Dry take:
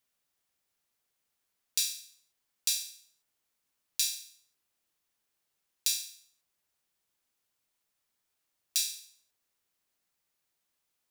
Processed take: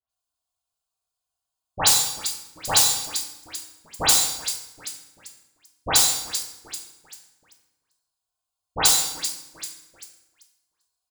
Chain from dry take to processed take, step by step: band-stop 5.7 kHz, Q 10; in parallel at -1 dB: compression, threshold -41 dBFS, peak gain reduction 15 dB; on the sum: frequency shift -15 Hz; comb 2.8 ms, depth 91%; Chebyshev shaper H 3 -26 dB, 5 -10 dB, 7 -6 dB, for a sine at -11 dBFS; static phaser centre 820 Hz, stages 4; frequency-shifting echo 391 ms, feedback 55%, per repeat +61 Hz, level -15.5 dB; waveshaping leveller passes 5; peaking EQ 14 kHz -13 dB 0.38 oct; phase dispersion highs, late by 100 ms, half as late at 2.1 kHz; on a send at -1.5 dB: reverberation RT60 0.95 s, pre-delay 3 ms; on the sum: trim -1 dB

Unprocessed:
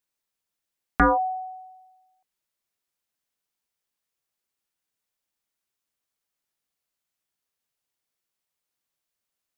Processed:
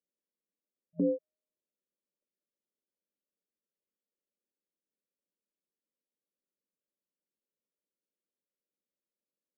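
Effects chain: FFT band-pass 170–620 Hz; in parallel at -1.5 dB: compression, threshold -38 dBFS, peak gain reduction 17 dB; on the sum: trim -6 dB

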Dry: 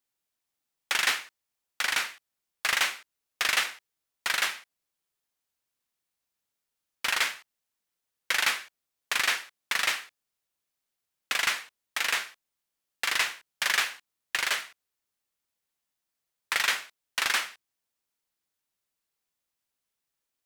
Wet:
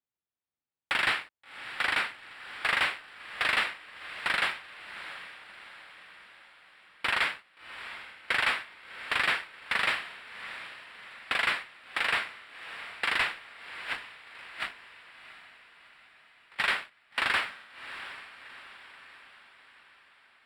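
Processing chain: high-pass 62 Hz; bass shelf 150 Hz +8.5 dB; waveshaping leveller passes 2; 13.48–16.59 s: compressor with a negative ratio -34 dBFS, ratio -0.5; boxcar filter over 7 samples; echo that smears into a reverb 711 ms, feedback 52%, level -13 dB; trim -4 dB

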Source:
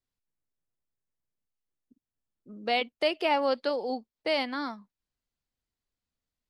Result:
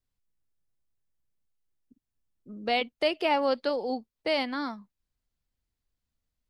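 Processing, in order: bass shelf 130 Hz +10 dB

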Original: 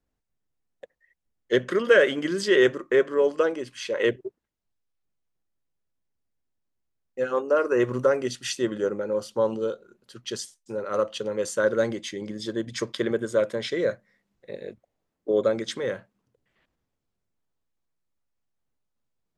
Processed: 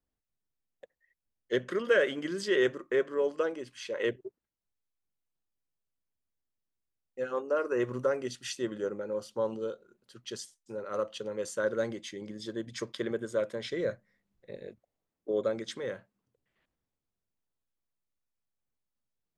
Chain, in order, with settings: 13.64–14.68 s: bass shelf 130 Hz +9.5 dB; trim -7.5 dB

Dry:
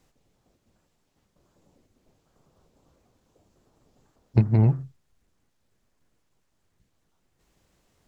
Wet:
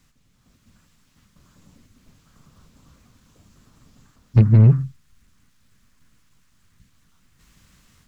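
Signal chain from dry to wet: high-order bell 530 Hz -12 dB; level rider gain up to 7 dB; saturation -12 dBFS, distortion -13 dB; trim +6 dB

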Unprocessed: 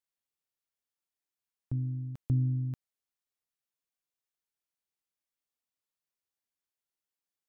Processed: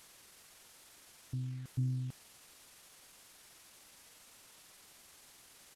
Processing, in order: one-bit delta coder 64 kbps, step -46 dBFS; tempo 1.3×; trim -5.5 dB

